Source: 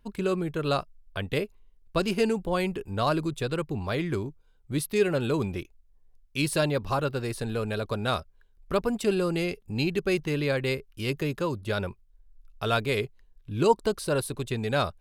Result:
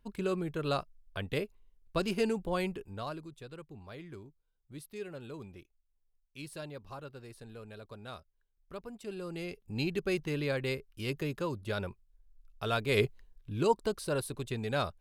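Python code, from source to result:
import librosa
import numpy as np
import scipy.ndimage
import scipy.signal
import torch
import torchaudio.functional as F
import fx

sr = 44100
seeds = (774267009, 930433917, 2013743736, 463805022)

y = fx.gain(x, sr, db=fx.line((2.65, -5.5), (3.27, -18.0), (8.99, -18.0), (9.77, -6.0), (12.85, -6.0), (13.04, 4.0), (13.63, -6.0)))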